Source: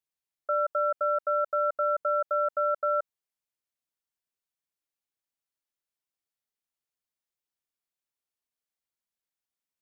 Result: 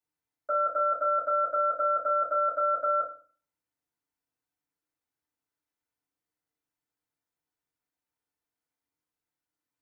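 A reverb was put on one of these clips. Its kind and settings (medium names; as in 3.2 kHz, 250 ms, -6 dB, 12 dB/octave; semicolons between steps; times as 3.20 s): FDN reverb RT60 0.41 s, low-frequency decay 1.5×, high-frequency decay 0.25×, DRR -7.5 dB; trim -4.5 dB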